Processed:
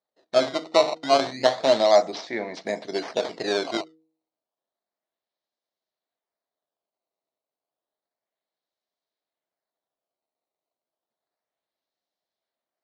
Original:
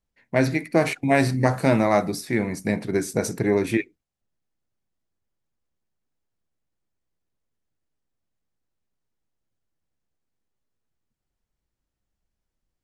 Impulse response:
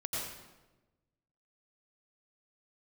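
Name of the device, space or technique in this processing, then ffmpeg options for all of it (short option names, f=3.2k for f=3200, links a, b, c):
circuit-bent sampling toy: -filter_complex "[0:a]acrusher=samples=15:mix=1:aa=0.000001:lfo=1:lforange=24:lforate=0.31,highpass=420,equalizer=f=650:t=q:w=4:g=9,equalizer=f=1.4k:t=q:w=4:g=-4,equalizer=f=2.6k:t=q:w=4:g=-7,equalizer=f=4k:t=q:w=4:g=6,lowpass=f=5.2k:w=0.5412,lowpass=f=5.2k:w=1.3066,highshelf=f=7.9k:g=11.5,bandreject=f=159.2:t=h:w=4,bandreject=f=318.4:t=h:w=4,bandreject=f=477.6:t=h:w=4,asettb=1/sr,asplit=3[a][b][c];[a]atrim=end=1.784[d];[b]atrim=start=1.78:end=2.65,asetpts=PTS-STARTPTS,afade=t=in:d=0.004:c=qsin,afade=t=out:st=0.866:d=0.004:c=qsin,lowpass=f=8.6k:w=0.5412,lowpass=f=8.6k:w=1.3066[e];[c]atrim=start=2.646[f];[d][e]acrossfade=d=0.004:c1=hsin:c2=qsin[g];[g][f]acrossfade=d=0.004:c1=qsin:c2=hsin,volume=-1.5dB"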